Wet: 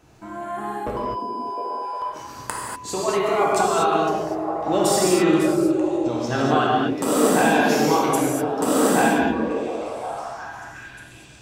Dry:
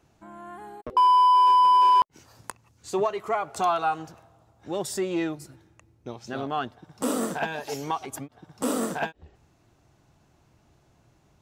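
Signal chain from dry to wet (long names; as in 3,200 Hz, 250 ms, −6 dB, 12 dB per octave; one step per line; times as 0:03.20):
compressor whose output falls as the input rises −28 dBFS, ratio −1
echo through a band-pass that steps 355 ms, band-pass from 270 Hz, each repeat 0.7 octaves, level −1 dB
reverb whose tail is shaped and stops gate 270 ms flat, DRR −4.5 dB
level +2 dB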